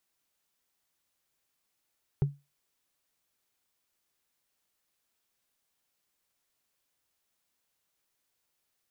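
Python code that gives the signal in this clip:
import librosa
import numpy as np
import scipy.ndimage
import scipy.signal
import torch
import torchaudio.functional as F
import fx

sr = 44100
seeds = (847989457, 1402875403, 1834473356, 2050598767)

y = fx.strike_wood(sr, length_s=0.45, level_db=-18.5, body='bar', hz=142.0, decay_s=0.24, tilt_db=10.5, modes=5)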